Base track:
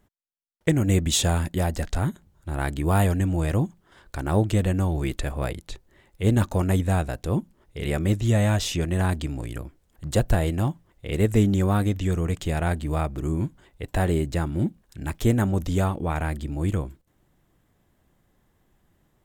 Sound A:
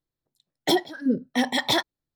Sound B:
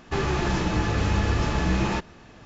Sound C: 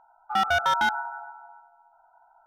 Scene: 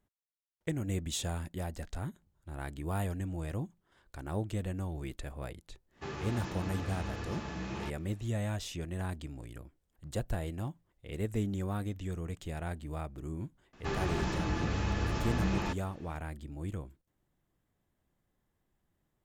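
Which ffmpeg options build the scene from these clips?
-filter_complex "[2:a]asplit=2[s0][s1];[0:a]volume=0.211[s2];[s0]highpass=81,atrim=end=2.45,asetpts=PTS-STARTPTS,volume=0.188,afade=t=in:d=0.1,afade=t=out:st=2.35:d=0.1,adelay=5900[s3];[s1]atrim=end=2.45,asetpts=PTS-STARTPTS,volume=0.355,afade=t=in:d=0.004:c=hsin,afade=t=out:st=2.446:d=0.004:c=hsin,adelay=13730[s4];[s2][s3][s4]amix=inputs=3:normalize=0"

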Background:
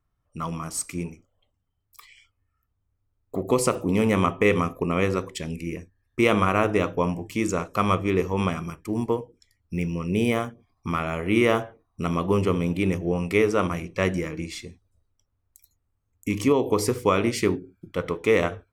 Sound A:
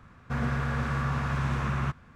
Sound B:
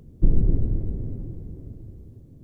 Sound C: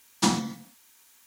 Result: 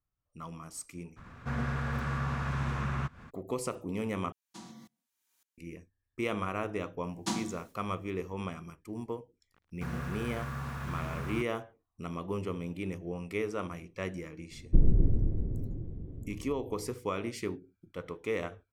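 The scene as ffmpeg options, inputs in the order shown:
-filter_complex "[1:a]asplit=2[s0][s1];[3:a]asplit=2[s2][s3];[0:a]volume=0.224[s4];[s0]acompressor=mode=upward:threshold=0.0158:ratio=2.5:attack=3.2:release=140:knee=2.83:detection=peak[s5];[s2]aeval=exprs='val(0)*pow(10,-26*if(lt(mod(-1.8*n/s,1),2*abs(-1.8)/1000),1-mod(-1.8*n/s,1)/(2*abs(-1.8)/1000),(mod(-1.8*n/s,1)-2*abs(-1.8)/1000)/(1-2*abs(-1.8)/1000))/20)':c=same[s6];[s3]agate=range=0.251:threshold=0.00447:ratio=3:release=146:detection=rms[s7];[s1]acrusher=bits=6:mix=0:aa=0.5[s8];[2:a]aresample=8000,aresample=44100[s9];[s4]asplit=2[s10][s11];[s10]atrim=end=4.324[s12];[s6]atrim=end=1.26,asetpts=PTS-STARTPTS,volume=0.237[s13];[s11]atrim=start=5.576[s14];[s5]atrim=end=2.15,asetpts=PTS-STARTPTS,volume=0.631,afade=t=in:d=0.02,afade=t=out:st=2.13:d=0.02,adelay=1160[s15];[s7]atrim=end=1.26,asetpts=PTS-STARTPTS,volume=0.299,afade=t=in:d=0.004:c=hsin,afade=t=out:st=1.256:d=0.004:c=hsin,adelay=7040[s16];[s8]atrim=end=2.15,asetpts=PTS-STARTPTS,volume=0.355,afade=t=in:d=0.004:c=hsin,afade=t=out:st=2.146:d=0.004:c=hsin,adelay=9510[s17];[s9]atrim=end=2.43,asetpts=PTS-STARTPTS,volume=0.631,afade=t=in:d=0.004:c=hsin,afade=t=out:st=2.426:d=0.004:c=hsin,adelay=14510[s18];[s12][s13]acrossfade=d=0.004:c1=hsin:c2=hsin[s19];[s19][s14]acrossfade=d=0.004:c1=hsin:c2=hsin[s20];[s20][s15][s16][s17][s18]amix=inputs=5:normalize=0"

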